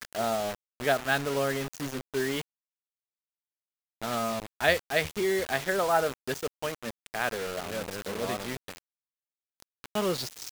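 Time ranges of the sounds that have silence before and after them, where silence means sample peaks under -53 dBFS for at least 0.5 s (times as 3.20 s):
4.02–8.78 s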